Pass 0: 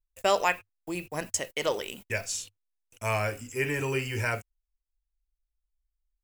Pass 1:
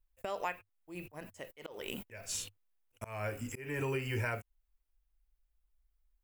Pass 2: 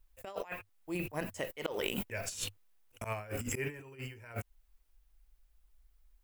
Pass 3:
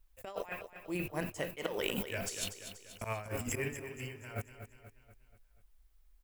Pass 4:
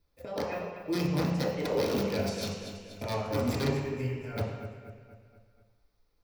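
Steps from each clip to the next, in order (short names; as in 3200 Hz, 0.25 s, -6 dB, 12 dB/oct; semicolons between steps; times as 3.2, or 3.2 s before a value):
bell 6100 Hz -9 dB 1.7 oct; compressor 12:1, threshold -37 dBFS, peak gain reduction 18 dB; auto swell 0.223 s; gain +6 dB
negative-ratio compressor -43 dBFS, ratio -0.5; gain +5 dB
feedback echo 0.241 s, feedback 50%, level -10 dB
wrapped overs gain 28.5 dB; reverb RT60 1.0 s, pre-delay 3 ms, DRR -5.5 dB; gain -6.5 dB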